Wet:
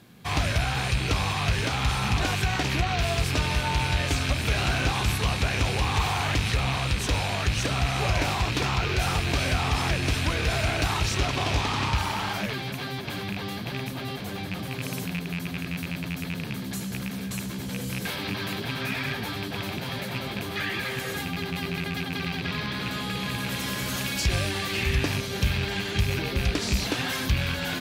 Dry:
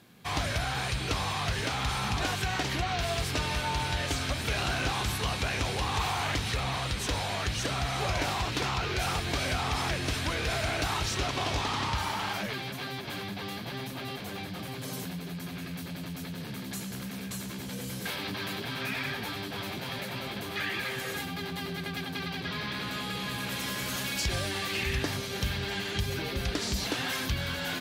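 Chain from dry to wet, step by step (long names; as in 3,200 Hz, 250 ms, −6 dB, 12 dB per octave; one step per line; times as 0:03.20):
loose part that buzzes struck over −35 dBFS, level −23 dBFS
low-shelf EQ 230 Hz +5.5 dB
level +2.5 dB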